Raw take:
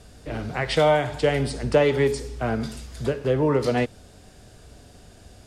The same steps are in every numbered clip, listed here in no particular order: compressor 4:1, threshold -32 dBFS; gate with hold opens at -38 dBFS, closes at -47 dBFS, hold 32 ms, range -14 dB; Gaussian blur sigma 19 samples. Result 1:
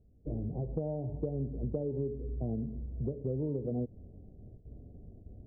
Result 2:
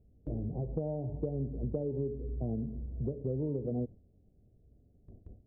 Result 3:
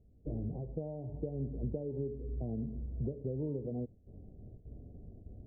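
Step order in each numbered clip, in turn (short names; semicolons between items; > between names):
gate with hold > Gaussian blur > compressor; Gaussian blur > compressor > gate with hold; compressor > gate with hold > Gaussian blur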